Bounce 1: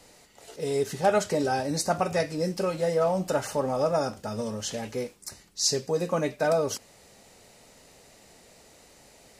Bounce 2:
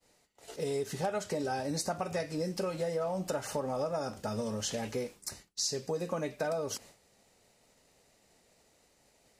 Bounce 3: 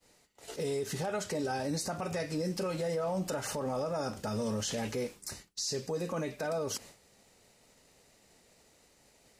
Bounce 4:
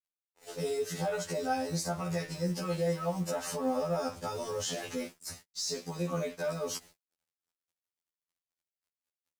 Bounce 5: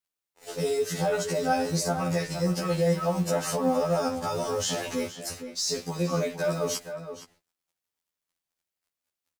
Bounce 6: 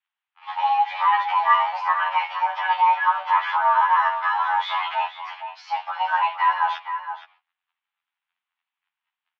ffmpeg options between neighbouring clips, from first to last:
-af "agate=range=0.0224:threshold=0.00562:ratio=3:detection=peak,acompressor=threshold=0.0282:ratio=5"
-af "equalizer=f=680:t=o:w=0.77:g=-2.5,alimiter=level_in=1.88:limit=0.0631:level=0:latency=1:release=13,volume=0.531,volume=1.5"
-af "aeval=exprs='sgn(val(0))*max(abs(val(0))-0.002,0)':c=same,acrusher=bits=7:mode=log:mix=0:aa=0.000001,afftfilt=real='re*2*eq(mod(b,4),0)':imag='im*2*eq(mod(b,4),0)':win_size=2048:overlap=0.75,volume=1.5"
-filter_complex "[0:a]asplit=2[s0][s1];[s1]adelay=466.5,volume=0.355,highshelf=f=4000:g=-10.5[s2];[s0][s2]amix=inputs=2:normalize=0,volume=2"
-af "highpass=f=380:t=q:w=0.5412,highpass=f=380:t=q:w=1.307,lowpass=f=2900:t=q:w=0.5176,lowpass=f=2900:t=q:w=0.7071,lowpass=f=2900:t=q:w=1.932,afreqshift=400,volume=2.66"

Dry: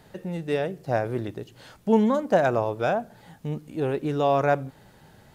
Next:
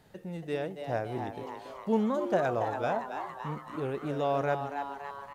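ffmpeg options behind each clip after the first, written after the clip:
-filter_complex "[0:a]asplit=9[s0][s1][s2][s3][s4][s5][s6][s7][s8];[s1]adelay=281,afreqshift=140,volume=0.398[s9];[s2]adelay=562,afreqshift=280,volume=0.245[s10];[s3]adelay=843,afreqshift=420,volume=0.153[s11];[s4]adelay=1124,afreqshift=560,volume=0.0944[s12];[s5]adelay=1405,afreqshift=700,volume=0.0589[s13];[s6]adelay=1686,afreqshift=840,volume=0.0363[s14];[s7]adelay=1967,afreqshift=980,volume=0.0226[s15];[s8]adelay=2248,afreqshift=1120,volume=0.014[s16];[s0][s9][s10][s11][s12][s13][s14][s15][s16]amix=inputs=9:normalize=0,volume=0.422"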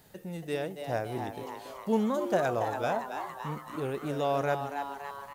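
-af "aemphasis=mode=production:type=50kf"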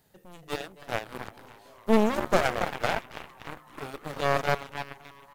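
-af "aeval=exprs='0.168*(cos(1*acos(clip(val(0)/0.168,-1,1)))-cos(1*PI/2))+0.00376*(cos(3*acos(clip(val(0)/0.168,-1,1)))-cos(3*PI/2))+0.0266*(cos(7*acos(clip(val(0)/0.168,-1,1)))-cos(7*PI/2))+0.00376*(cos(8*acos(clip(val(0)/0.168,-1,1)))-cos(8*PI/2))':c=same,aeval=exprs='clip(val(0),-1,0.0119)':c=same,volume=2.51"

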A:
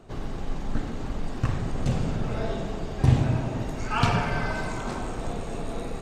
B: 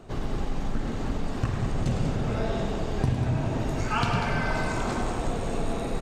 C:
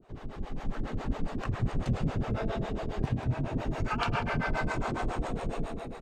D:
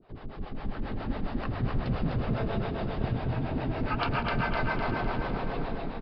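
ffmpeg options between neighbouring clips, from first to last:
-filter_complex "[0:a]acompressor=threshold=0.0562:ratio=6,asplit=2[s0][s1];[s1]aecho=0:1:105|192.4:0.355|0.355[s2];[s0][s2]amix=inputs=2:normalize=0,volume=1.41"
-filter_complex "[0:a]bass=f=250:g=-1,treble=f=4000:g=-8,dynaudnorm=f=120:g=9:m=2.37,acrossover=split=420[s0][s1];[s0]aeval=exprs='val(0)*(1-1/2+1/2*cos(2*PI*7.3*n/s))':c=same[s2];[s1]aeval=exprs='val(0)*(1-1/2-1/2*cos(2*PI*7.3*n/s))':c=same[s3];[s2][s3]amix=inputs=2:normalize=0,volume=0.501"
-af "aresample=11025,aresample=44100,bandreject=f=50:t=h:w=6,bandreject=f=100:t=h:w=6,bandreject=f=150:t=h:w=6,aecho=1:1:253|506|759|1012|1265|1518|1771:0.668|0.361|0.195|0.105|0.0568|0.0307|0.0166"

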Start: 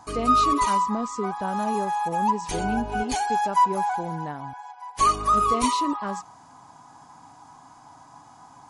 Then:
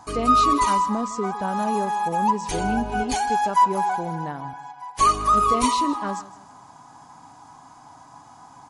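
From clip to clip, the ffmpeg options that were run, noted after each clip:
-af "aecho=1:1:158|316|474:0.133|0.0493|0.0183,volume=1.26"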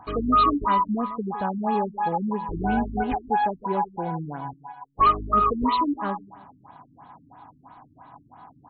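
-af "afftfilt=real='re*lt(b*sr/1024,310*pow(4400/310,0.5+0.5*sin(2*PI*3*pts/sr)))':imag='im*lt(b*sr/1024,310*pow(4400/310,0.5+0.5*sin(2*PI*3*pts/sr)))':win_size=1024:overlap=0.75"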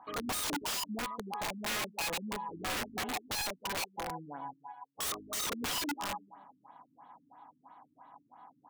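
-af "highpass=340,equalizer=f=380:t=q:w=4:g=-9,equalizer=f=680:t=q:w=4:g=-4,equalizer=f=1100:t=q:w=4:g=-3,equalizer=f=1500:t=q:w=4:g=-5,equalizer=f=2500:t=q:w=4:g=-7,lowpass=f=3400:w=0.5412,lowpass=f=3400:w=1.3066,aeval=exprs='(mod(18.8*val(0)+1,2)-1)/18.8':c=same,volume=0.596"

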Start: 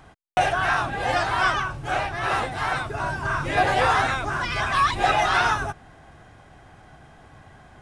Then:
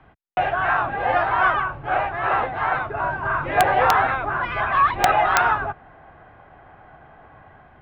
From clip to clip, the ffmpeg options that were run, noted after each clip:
-filter_complex "[0:a]lowpass=f=2900:w=0.5412,lowpass=f=2900:w=1.3066,acrossover=split=110|450|1600[s0][s1][s2][s3];[s2]dynaudnorm=f=210:g=5:m=2.66[s4];[s0][s1][s4][s3]amix=inputs=4:normalize=0,aeval=exprs='(mod(1.5*val(0)+1,2)-1)/1.5':c=same,volume=0.708"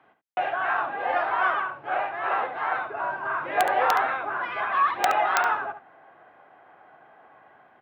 -af "highpass=310,aecho=1:1:70:0.299,volume=0.562"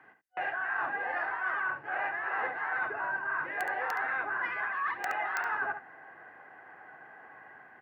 -af "superequalizer=8b=0.631:11b=2.51:13b=0.447,areverse,acompressor=threshold=0.0355:ratio=20,areverse"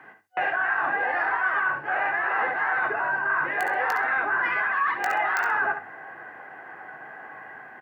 -af "bandreject=f=50:t=h:w=6,bandreject=f=100:t=h:w=6,alimiter=level_in=1.19:limit=0.0631:level=0:latency=1:release=28,volume=0.841,aecho=1:1:20|61:0.266|0.211,volume=2.82"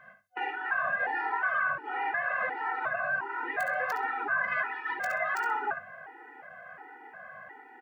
-af "equalizer=f=600:w=5.9:g=3.5,afftfilt=real='re*gt(sin(2*PI*1.4*pts/sr)*(1-2*mod(floor(b*sr/1024/250),2)),0)':imag='im*gt(sin(2*PI*1.4*pts/sr)*(1-2*mod(floor(b*sr/1024/250),2)),0)':win_size=1024:overlap=0.75,volume=0.75"

